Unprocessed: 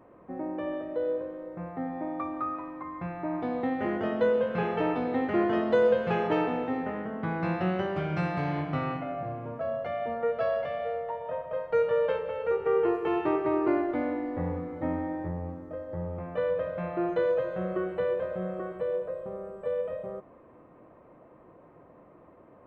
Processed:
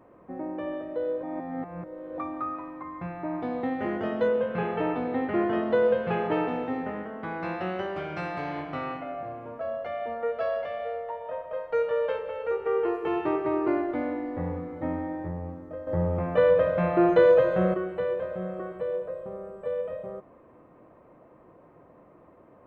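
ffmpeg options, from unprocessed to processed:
ffmpeg -i in.wav -filter_complex "[0:a]asettb=1/sr,asplit=3[link_01][link_02][link_03];[link_01]atrim=end=4.284[link_04];[link_02]atrim=start=4.28:end=6.48,asetpts=PTS-STARTPTS,afade=type=in:duration=0.004:curve=qsin,afade=type=out:start_time=2.196:duration=0.004:curve=qsin,lowpass=3500[link_05];[link_03]atrim=start=6.476[link_06];[link_04][link_05]acrossfade=duration=0.004:curve1=hsin:curve2=qsin[link_07];[link_07][link_06]acrossfade=duration=0.004:curve1=qsin:curve2=hsin,asettb=1/sr,asplit=3[link_08][link_09][link_10];[link_08]atrim=end=7.034[link_11];[link_09]atrim=start=7.03:end=13.04,asetpts=PTS-STARTPTS,afade=type=in:duration=0.004:curve=qsin,afade=type=out:start_time=6.006:duration=0.004:curve=qsin,equalizer=frequency=140:width_type=o:width=1.2:gain=-11[link_12];[link_10]atrim=start=13.036[link_13];[link_11][link_12]acrossfade=duration=0.004:curve1=hsin:curve2=qsin[link_14];[link_14][link_13]acrossfade=duration=0.004:curve1=qsin:curve2=hsin,asplit=5[link_15][link_16][link_17][link_18][link_19];[link_15]atrim=end=1.232[link_20];[link_16]atrim=start=1.228:end=2.182,asetpts=PTS-STARTPTS,areverse[link_21];[link_17]atrim=start=2.178:end=15.872[link_22];[link_18]atrim=start=15.868:end=17.742,asetpts=PTS-STARTPTS,volume=8.5dB[link_23];[link_19]atrim=start=17.738[link_24];[link_20][link_21]acrossfade=duration=0.004:curve1=hsin:curve2=hsin[link_25];[link_25][link_22]acrossfade=duration=0.004:curve1=hsin:curve2=hsin[link_26];[link_26][link_23]acrossfade=duration=0.004:curve1=hsin:curve2=hsin[link_27];[link_27][link_24]acrossfade=duration=0.004:curve1=hsin:curve2=hsin" out.wav

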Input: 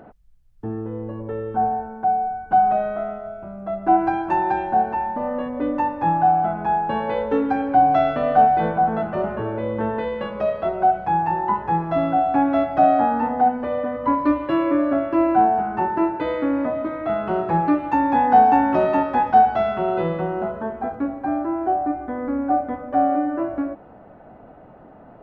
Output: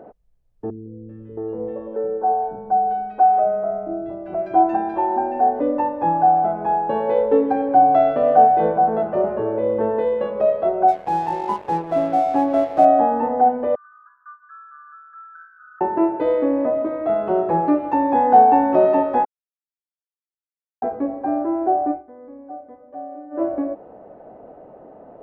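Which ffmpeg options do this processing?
ffmpeg -i in.wav -filter_complex "[0:a]asettb=1/sr,asplit=3[link_01][link_02][link_03];[link_01]atrim=end=0.704[link_04];[link_02]atrim=start=0.7:end=5.6,asetpts=PTS-STARTPTS,afade=type=in:duration=0.004:curve=qsin,afade=type=out:start_time=4.896:duration=0.004:curve=qsin,acrossover=split=280|1800[link_05][link_06][link_07];[link_07]adelay=390[link_08];[link_06]adelay=670[link_09];[link_05][link_09][link_08]amix=inputs=3:normalize=0,atrim=end_sample=216090[link_10];[link_03]atrim=start=5.596[link_11];[link_04][link_10]acrossfade=duration=0.004:curve1=hsin:curve2=qsin[link_12];[link_12][link_11]acrossfade=duration=0.004:curve1=qsin:curve2=hsin,asettb=1/sr,asplit=3[link_13][link_14][link_15];[link_13]atrim=end=10.884[link_16];[link_14]atrim=start=10.88:end=12.85,asetpts=PTS-STARTPTS,afade=type=in:duration=0.004:curve=qsin,afade=type=out:start_time=1.966:duration=0.004:curve=qsin,aeval=exprs='sgn(val(0))*max(abs(val(0))-0.0224,0)':channel_layout=same[link_17];[link_15]atrim=start=12.846[link_18];[link_16][link_17]acrossfade=duration=0.004:curve1=hsin:curve2=qsin[link_19];[link_19][link_18]acrossfade=duration=0.004:curve1=qsin:curve2=hsin,asettb=1/sr,asplit=3[link_20][link_21][link_22];[link_20]atrim=end=13.754[link_23];[link_21]atrim=start=13.75:end=15.81,asetpts=PTS-STARTPTS,afade=type=in:duration=0.004:curve=qsin,afade=type=out:start_time=2.056:duration=0.004:curve=qsin,asuperpass=centerf=1400:order=12:qfactor=3.3[link_24];[link_22]atrim=start=15.806[link_25];[link_23][link_24]acrossfade=duration=0.004:curve1=hsin:curve2=qsin[link_26];[link_26][link_25]acrossfade=duration=0.004:curve1=qsin:curve2=hsin,asplit=5[link_27][link_28][link_29][link_30][link_31];[link_27]atrim=end=19.25,asetpts=PTS-STARTPTS,afade=type=out:start_time=19.246:duration=0.004:curve=hsin[link_32];[link_28]atrim=start=19.25:end=20.82,asetpts=PTS-STARTPTS,volume=0[link_33];[link_29]atrim=start=20.82:end=22.03,asetpts=PTS-STARTPTS,afade=type=in:duration=0.004:curve=hsin,afade=type=out:start_time=1.09:duration=0.12:silence=0.133352[link_34];[link_30]atrim=start=22.03:end=23.3,asetpts=PTS-STARTPTS,volume=-17.5dB[link_35];[link_31]atrim=start=23.3,asetpts=PTS-STARTPTS,afade=type=in:duration=0.12:silence=0.133352[link_36];[link_32][link_33][link_34][link_35][link_36]concat=n=5:v=0:a=1,equalizer=frequency=490:width_type=o:width=1.8:gain=15,bandreject=frequency=1400:width=14,volume=-8dB" out.wav

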